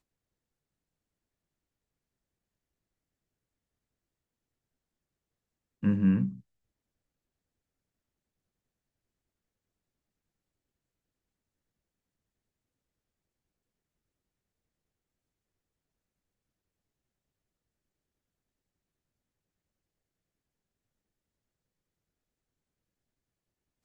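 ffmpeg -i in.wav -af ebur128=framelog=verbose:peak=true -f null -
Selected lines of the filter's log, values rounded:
Integrated loudness:
  I:         -27.9 LUFS
  Threshold: -38.9 LUFS
Loudness range:
  LRA:         5.1 LU
  Threshold: -54.3 LUFS
  LRA low:   -38.8 LUFS
  LRA high:  -33.6 LUFS
True peak:
  Peak:      -15.5 dBFS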